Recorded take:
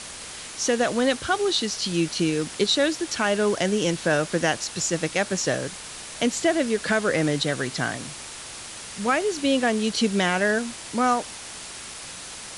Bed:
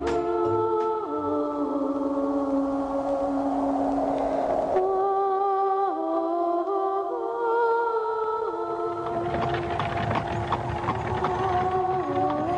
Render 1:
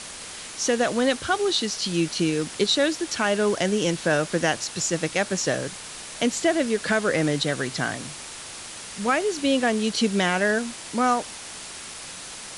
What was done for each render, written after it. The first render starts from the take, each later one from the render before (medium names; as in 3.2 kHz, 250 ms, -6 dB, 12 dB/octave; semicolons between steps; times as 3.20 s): de-hum 60 Hz, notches 2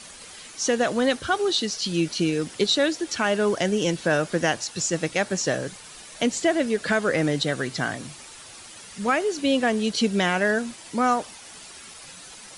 noise reduction 9 dB, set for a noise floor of -39 dBFS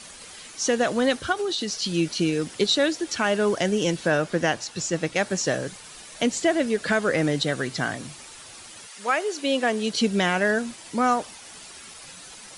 1.32–1.79 s: compression, threshold -23 dBFS; 4.10–5.16 s: treble shelf 6.5 kHz -7 dB; 8.86–9.91 s: high-pass 650 Hz -> 200 Hz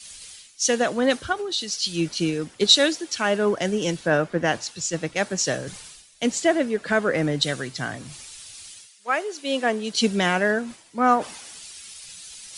reverse; upward compressor, threshold -26 dBFS; reverse; three bands expanded up and down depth 100%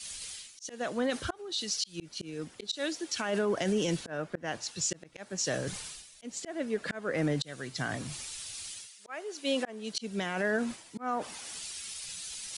slow attack 584 ms; peak limiter -21 dBFS, peak gain reduction 12 dB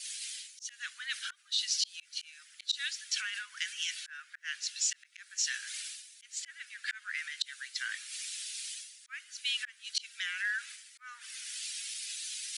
steep high-pass 1.5 kHz 48 dB/octave; dynamic bell 2.9 kHz, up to +4 dB, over -46 dBFS, Q 0.85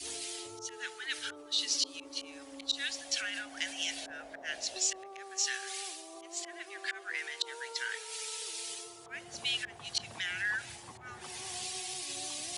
add bed -24.5 dB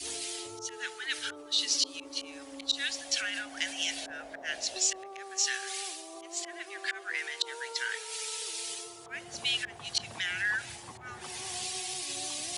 trim +3 dB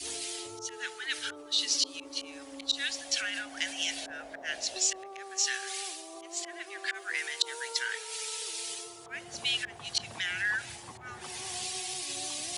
6.94–7.79 s: treble shelf 5.8 kHz +9 dB